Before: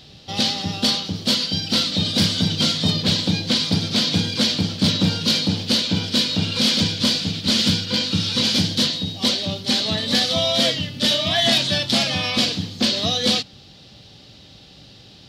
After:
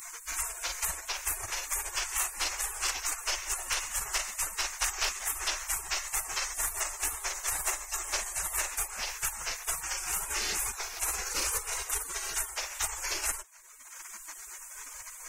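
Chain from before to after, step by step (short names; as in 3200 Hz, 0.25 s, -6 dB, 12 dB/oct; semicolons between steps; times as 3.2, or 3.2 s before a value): spectral gate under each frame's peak -30 dB weak; low shelf 110 Hz +8.5 dB; three-band squash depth 70%; gain +8.5 dB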